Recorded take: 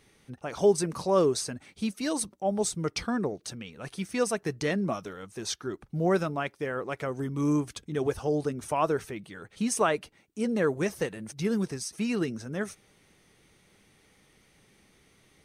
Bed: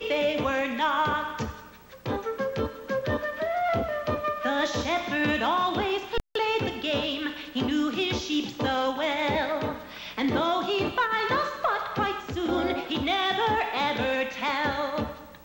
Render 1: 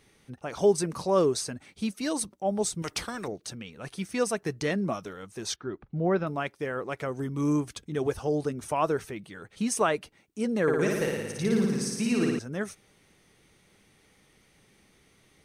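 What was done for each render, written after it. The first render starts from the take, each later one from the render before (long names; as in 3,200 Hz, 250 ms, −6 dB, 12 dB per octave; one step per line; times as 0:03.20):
0:02.82–0:03.28: every bin compressed towards the loudest bin 2 to 1
0:05.56–0:06.27: high-frequency loss of the air 280 metres
0:10.62–0:12.39: flutter between parallel walls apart 9.8 metres, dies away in 1.3 s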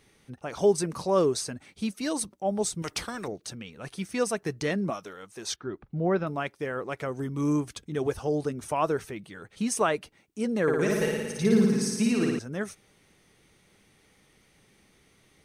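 0:04.90–0:05.48: low-shelf EQ 230 Hz −11 dB
0:10.89–0:12.11: comb filter 4.7 ms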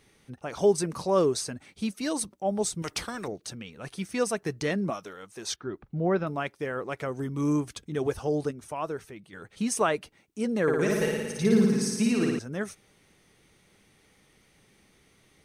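0:08.51–0:09.33: clip gain −6.5 dB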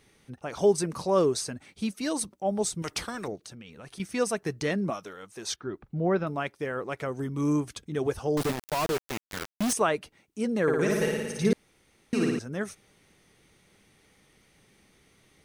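0:03.35–0:04.00: downward compressor, threshold −41 dBFS
0:08.37–0:09.73: log-companded quantiser 2 bits
0:11.53–0:12.13: fill with room tone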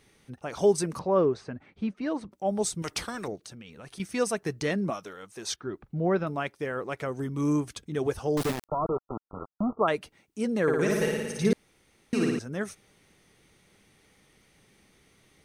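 0:00.99–0:02.32: low-pass filter 1,900 Hz
0:08.67–0:09.88: linear-phase brick-wall low-pass 1,400 Hz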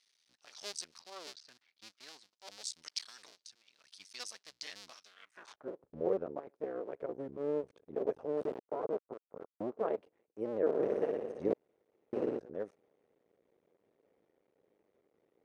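sub-harmonics by changed cycles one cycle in 2, muted
band-pass filter sweep 4,700 Hz → 470 Hz, 0:05.05–0:05.70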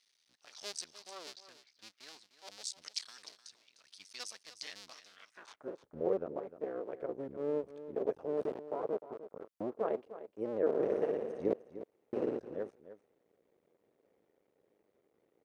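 single-tap delay 303 ms −13.5 dB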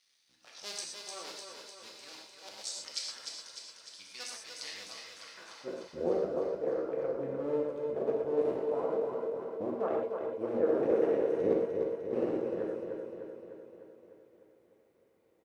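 repeating echo 301 ms, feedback 60%, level −6 dB
reverb whose tail is shaped and stops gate 150 ms flat, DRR −1 dB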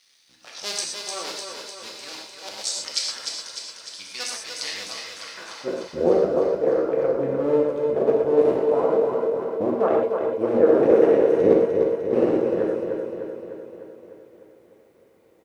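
level +12 dB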